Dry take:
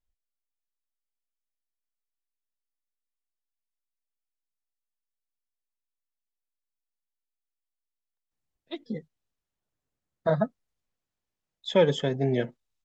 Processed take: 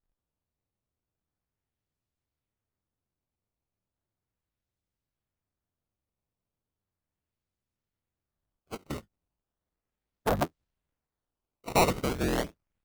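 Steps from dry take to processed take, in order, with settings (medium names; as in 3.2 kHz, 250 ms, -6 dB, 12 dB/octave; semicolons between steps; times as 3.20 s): cycle switcher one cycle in 3, inverted; decimation with a swept rate 15×, swing 160% 0.36 Hz; trim -3 dB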